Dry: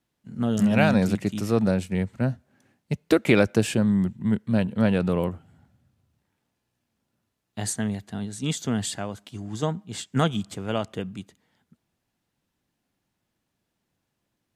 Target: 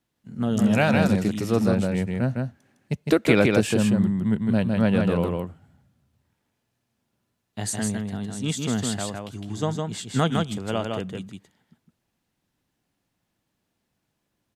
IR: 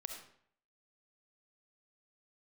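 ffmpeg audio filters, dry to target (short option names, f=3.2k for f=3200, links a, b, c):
-af "aecho=1:1:158:0.668"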